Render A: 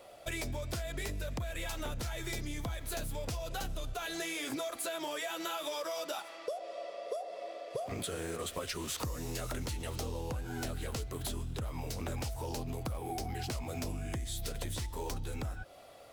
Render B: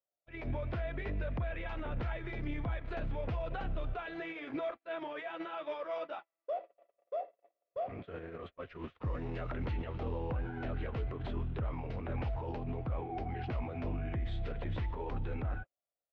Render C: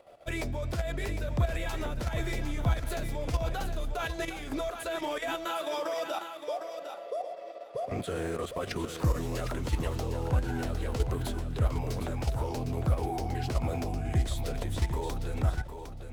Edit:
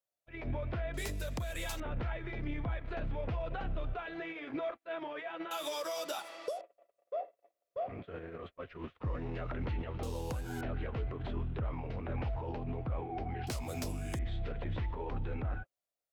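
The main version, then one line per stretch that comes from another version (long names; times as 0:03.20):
B
0:00.94–0:01.80: punch in from A
0:05.51–0:06.61: punch in from A
0:10.03–0:10.61: punch in from A
0:13.47–0:14.19: punch in from A
not used: C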